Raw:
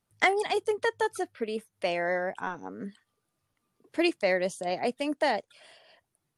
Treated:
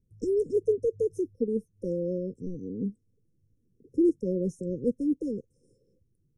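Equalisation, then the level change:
linear-phase brick-wall band-stop 540–5,200 Hz
RIAA equalisation playback
0.0 dB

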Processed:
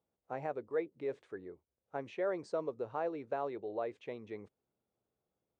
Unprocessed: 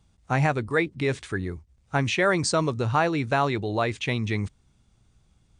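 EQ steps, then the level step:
resonant band-pass 490 Hz, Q 2.3
spectral tilt +1.5 dB per octave
−6.0 dB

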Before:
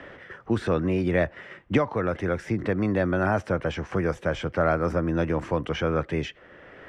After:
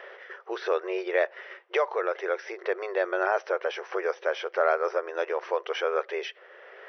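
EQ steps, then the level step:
linear-phase brick-wall band-pass 360–6,100 Hz
0.0 dB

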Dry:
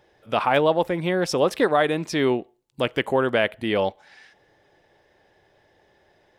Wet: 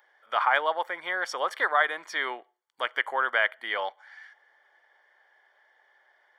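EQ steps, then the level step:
Savitzky-Golay smoothing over 41 samples
high-pass filter 1,100 Hz 12 dB per octave
spectral tilt +3.5 dB per octave
+3.5 dB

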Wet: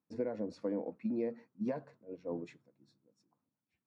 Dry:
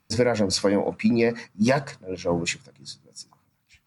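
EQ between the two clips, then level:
resonant band-pass 300 Hz, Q 1.4
low-shelf EQ 310 Hz −7 dB
−8.0 dB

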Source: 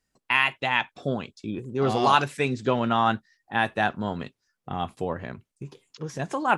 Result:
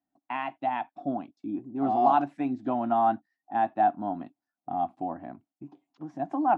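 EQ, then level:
pair of resonant band-passes 460 Hz, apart 1.3 octaves
+6.5 dB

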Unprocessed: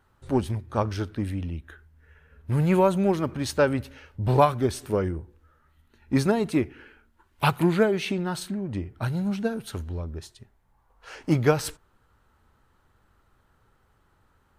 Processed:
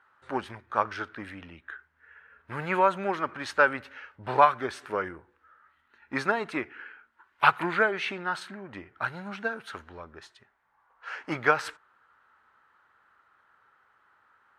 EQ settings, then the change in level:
resonant band-pass 1,500 Hz, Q 1.7
+8.0 dB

